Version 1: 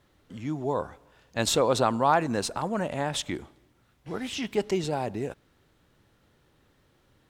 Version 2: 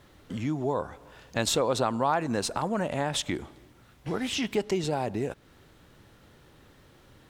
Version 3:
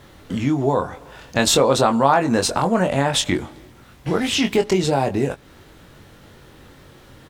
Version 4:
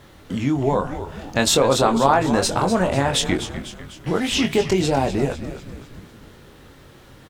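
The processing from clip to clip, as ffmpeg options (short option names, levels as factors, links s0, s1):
-af "acompressor=threshold=0.01:ratio=2,volume=2.66"
-filter_complex "[0:a]asplit=2[s0][s1];[s1]adelay=22,volume=0.501[s2];[s0][s2]amix=inputs=2:normalize=0,volume=2.82"
-filter_complex "[0:a]asplit=7[s0][s1][s2][s3][s4][s5][s6];[s1]adelay=249,afreqshift=-110,volume=0.282[s7];[s2]adelay=498,afreqshift=-220,volume=0.15[s8];[s3]adelay=747,afreqshift=-330,volume=0.0794[s9];[s4]adelay=996,afreqshift=-440,volume=0.0422[s10];[s5]adelay=1245,afreqshift=-550,volume=0.0221[s11];[s6]adelay=1494,afreqshift=-660,volume=0.0117[s12];[s0][s7][s8][s9][s10][s11][s12]amix=inputs=7:normalize=0,volume=0.891"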